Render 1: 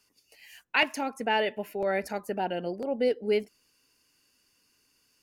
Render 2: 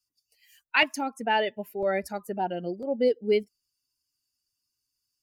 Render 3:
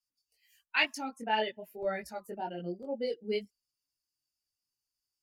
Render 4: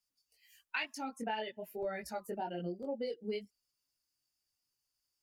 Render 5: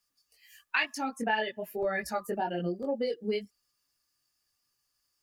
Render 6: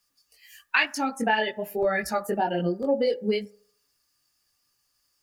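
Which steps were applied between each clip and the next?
per-bin expansion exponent 1.5; gain +3.5 dB
dynamic EQ 4300 Hz, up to +6 dB, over -45 dBFS, Q 0.86; chorus voices 4, 0.98 Hz, delay 20 ms, depth 3.3 ms; gain -5 dB
compressor 6:1, threshold -38 dBFS, peak gain reduction 15 dB; gain +3 dB
small resonant body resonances 1200/1700 Hz, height 12 dB, ringing for 45 ms; gain +7 dB
reverb RT60 0.60 s, pre-delay 3 ms, DRR 16 dB; gain +6 dB

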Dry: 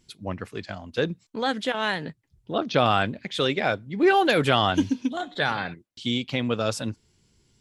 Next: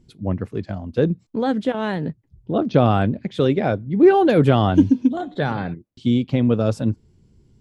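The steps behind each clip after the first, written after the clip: tilt shelf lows +10 dB, about 800 Hz; gain +1.5 dB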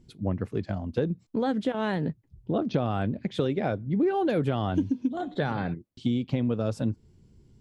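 compressor 5:1, threshold -21 dBFS, peak gain reduction 12 dB; gain -2 dB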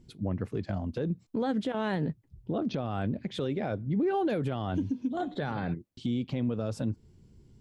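limiter -22 dBFS, peak gain reduction 9.5 dB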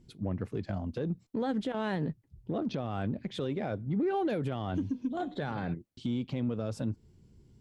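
added harmonics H 6 -36 dB, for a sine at -21.5 dBFS; gain -2 dB

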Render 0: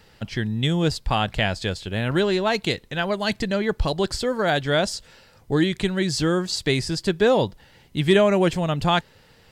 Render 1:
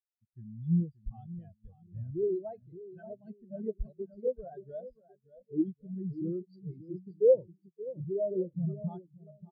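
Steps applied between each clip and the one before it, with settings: limiter -13.5 dBFS, peak gain reduction 8 dB; on a send: bouncing-ball echo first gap 0.58 s, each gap 0.9×, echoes 5; on the sum: spectral expander 4:1; gain -5 dB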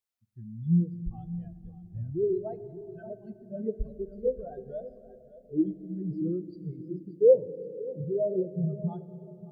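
on a send at -14.5 dB: bell 270 Hz +12 dB 0.29 oct + reverb RT60 3.3 s, pre-delay 4 ms; on the sum: gain +3.5 dB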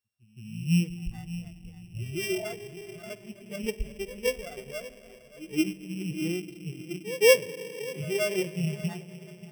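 sample sorter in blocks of 16 samples; spectral repair 2.1–2.42, 390–920 Hz both; reverse echo 0.169 s -18 dB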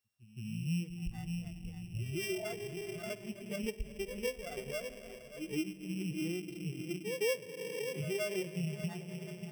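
compressor 3:1, threshold -38 dBFS, peak gain reduction 17.5 dB; gain +1.5 dB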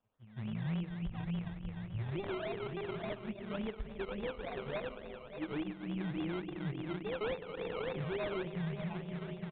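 limiter -33 dBFS, peak gain reduction 7.5 dB; decimation with a swept rate 20×, swing 60% 3.5 Hz; downsampling 8000 Hz; gain +2 dB

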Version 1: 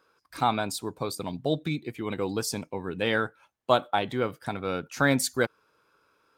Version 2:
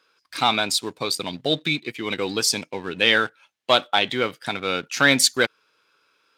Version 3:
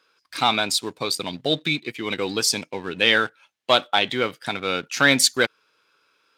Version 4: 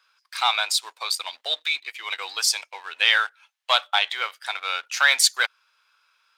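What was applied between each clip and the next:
sample leveller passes 1; weighting filter D
nothing audible
HPF 800 Hz 24 dB/oct

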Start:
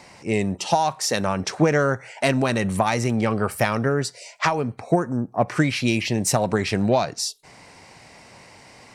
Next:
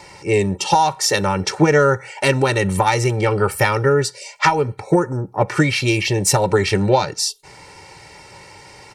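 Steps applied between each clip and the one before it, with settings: bell 200 Hz +8 dB 0.34 oct; notch 490 Hz, Q 12; comb 2.2 ms, depth 93%; gain +3 dB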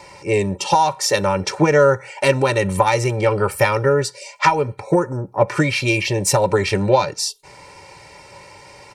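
small resonant body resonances 570/1000/2400 Hz, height 8 dB; gain -2 dB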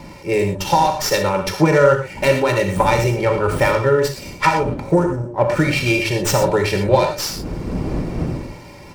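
wind noise 260 Hz -31 dBFS; non-linear reverb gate 0.14 s flat, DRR 3.5 dB; running maximum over 3 samples; gain -1 dB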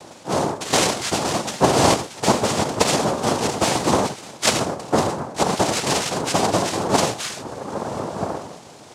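noise vocoder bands 2; gain -3.5 dB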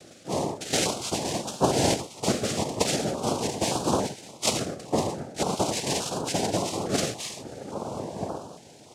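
stepped notch 3.5 Hz 950–2000 Hz; gain -5.5 dB

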